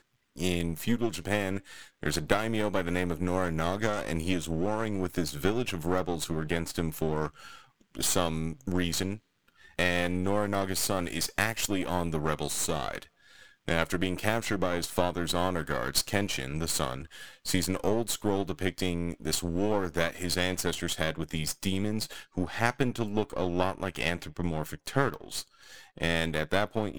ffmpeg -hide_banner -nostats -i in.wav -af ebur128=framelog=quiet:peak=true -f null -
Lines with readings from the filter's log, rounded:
Integrated loudness:
  I:         -30.4 LUFS
  Threshold: -40.8 LUFS
Loudness range:
  LRA:         1.9 LU
  Threshold: -50.7 LUFS
  LRA low:   -31.6 LUFS
  LRA high:  -29.8 LUFS
True peak:
  Peak:       -6.1 dBFS